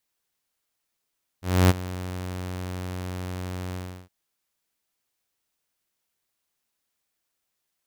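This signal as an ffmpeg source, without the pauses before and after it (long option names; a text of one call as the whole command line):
ffmpeg -f lavfi -i "aevalsrc='0.299*(2*mod(91.3*t,1)-1)':duration=2.665:sample_rate=44100,afade=type=in:duration=0.277,afade=type=out:start_time=0.277:duration=0.027:silence=0.133,afade=type=out:start_time=2.32:duration=0.345" out.wav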